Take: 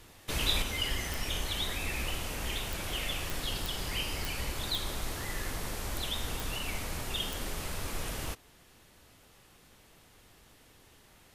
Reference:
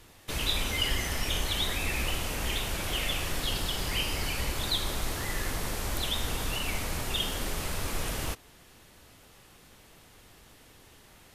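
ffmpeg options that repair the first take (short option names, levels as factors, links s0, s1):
-af "adeclick=t=4,asetnsamples=n=441:p=0,asendcmd='0.62 volume volume 4dB',volume=1"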